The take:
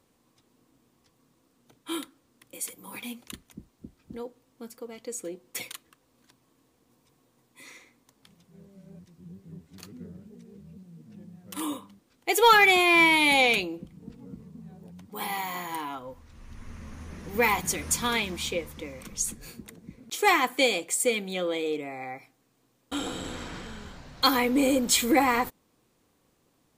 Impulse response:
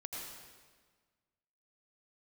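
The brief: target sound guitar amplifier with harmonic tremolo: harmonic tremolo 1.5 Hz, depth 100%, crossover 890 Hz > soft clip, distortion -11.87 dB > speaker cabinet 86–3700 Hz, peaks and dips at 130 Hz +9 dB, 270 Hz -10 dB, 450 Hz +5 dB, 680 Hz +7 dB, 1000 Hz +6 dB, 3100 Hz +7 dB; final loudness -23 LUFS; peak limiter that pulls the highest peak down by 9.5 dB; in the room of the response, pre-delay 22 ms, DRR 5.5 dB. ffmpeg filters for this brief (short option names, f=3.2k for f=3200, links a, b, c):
-filter_complex "[0:a]alimiter=limit=-19dB:level=0:latency=1,asplit=2[a][b];[1:a]atrim=start_sample=2205,adelay=22[c];[b][c]afir=irnorm=-1:irlink=0,volume=-5dB[d];[a][d]amix=inputs=2:normalize=0,acrossover=split=890[e][f];[e]aeval=exprs='val(0)*(1-1/2+1/2*cos(2*PI*1.5*n/s))':c=same[g];[f]aeval=exprs='val(0)*(1-1/2-1/2*cos(2*PI*1.5*n/s))':c=same[h];[g][h]amix=inputs=2:normalize=0,asoftclip=threshold=-28dB,highpass=86,equalizer=f=130:t=q:w=4:g=9,equalizer=f=270:t=q:w=4:g=-10,equalizer=f=450:t=q:w=4:g=5,equalizer=f=680:t=q:w=4:g=7,equalizer=f=1k:t=q:w=4:g=6,equalizer=f=3.1k:t=q:w=4:g=7,lowpass=f=3.7k:w=0.5412,lowpass=f=3.7k:w=1.3066,volume=12dB"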